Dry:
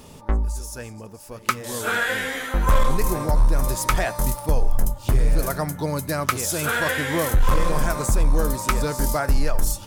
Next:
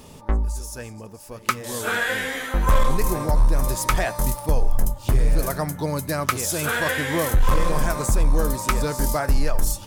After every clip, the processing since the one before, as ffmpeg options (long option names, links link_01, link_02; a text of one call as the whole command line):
ffmpeg -i in.wav -af "bandreject=frequency=1400:width=28" out.wav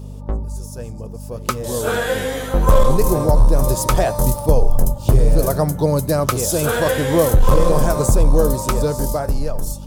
ffmpeg -i in.wav -af "dynaudnorm=framelen=140:gausssize=17:maxgain=11.5dB,aeval=exprs='val(0)+0.0355*(sin(2*PI*50*n/s)+sin(2*PI*2*50*n/s)/2+sin(2*PI*3*50*n/s)/3+sin(2*PI*4*50*n/s)/4+sin(2*PI*5*50*n/s)/5)':channel_layout=same,equalizer=frequency=125:width_type=o:width=1:gain=5,equalizer=frequency=500:width_type=o:width=1:gain=7,equalizer=frequency=2000:width_type=o:width=1:gain=-9,volume=-3.5dB" out.wav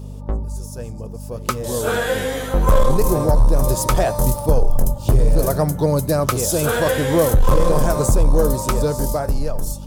ffmpeg -i in.wav -af "asoftclip=type=tanh:threshold=-4.5dB" out.wav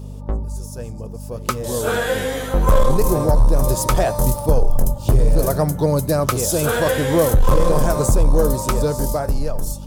ffmpeg -i in.wav -af anull out.wav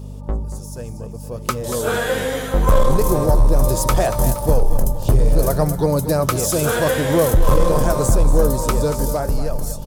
ffmpeg -i in.wav -af "aecho=1:1:234|468|702|936:0.251|0.103|0.0422|0.0173" out.wav